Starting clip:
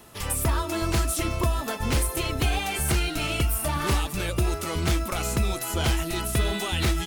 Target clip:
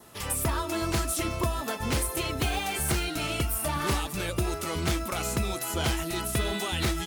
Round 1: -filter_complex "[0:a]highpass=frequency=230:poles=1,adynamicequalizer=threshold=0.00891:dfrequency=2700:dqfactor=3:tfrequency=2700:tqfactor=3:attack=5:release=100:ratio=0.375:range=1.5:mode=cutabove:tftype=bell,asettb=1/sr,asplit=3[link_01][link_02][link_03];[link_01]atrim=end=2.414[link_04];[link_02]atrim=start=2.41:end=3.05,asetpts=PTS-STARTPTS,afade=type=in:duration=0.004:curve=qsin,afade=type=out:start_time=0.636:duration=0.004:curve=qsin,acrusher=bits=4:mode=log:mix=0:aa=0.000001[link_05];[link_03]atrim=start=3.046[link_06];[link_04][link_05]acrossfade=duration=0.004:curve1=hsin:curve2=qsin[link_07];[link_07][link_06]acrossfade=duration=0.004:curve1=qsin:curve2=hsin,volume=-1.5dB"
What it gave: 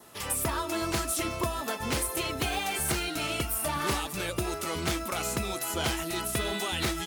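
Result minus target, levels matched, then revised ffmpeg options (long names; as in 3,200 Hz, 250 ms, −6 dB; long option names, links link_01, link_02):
125 Hz band −4.5 dB
-filter_complex "[0:a]highpass=frequency=88:poles=1,adynamicequalizer=threshold=0.00891:dfrequency=2700:dqfactor=3:tfrequency=2700:tqfactor=3:attack=5:release=100:ratio=0.375:range=1.5:mode=cutabove:tftype=bell,asettb=1/sr,asplit=3[link_01][link_02][link_03];[link_01]atrim=end=2.414[link_04];[link_02]atrim=start=2.41:end=3.05,asetpts=PTS-STARTPTS,afade=type=in:duration=0.004:curve=qsin,afade=type=out:start_time=0.636:duration=0.004:curve=qsin,acrusher=bits=4:mode=log:mix=0:aa=0.000001[link_05];[link_03]atrim=start=3.046[link_06];[link_04][link_05]acrossfade=duration=0.004:curve1=hsin:curve2=qsin[link_07];[link_07][link_06]acrossfade=duration=0.004:curve1=qsin:curve2=hsin,volume=-1.5dB"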